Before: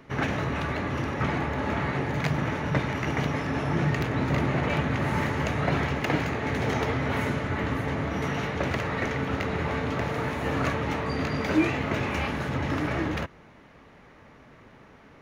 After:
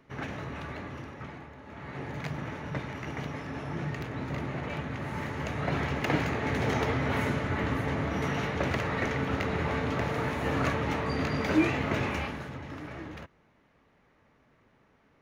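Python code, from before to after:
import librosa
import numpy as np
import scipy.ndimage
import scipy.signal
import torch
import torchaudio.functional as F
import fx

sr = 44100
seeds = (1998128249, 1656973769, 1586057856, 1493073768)

y = fx.gain(x, sr, db=fx.line((0.8, -9.5), (1.64, -20.0), (2.03, -9.0), (5.11, -9.0), (6.15, -1.5), (12.06, -1.5), (12.63, -13.0)))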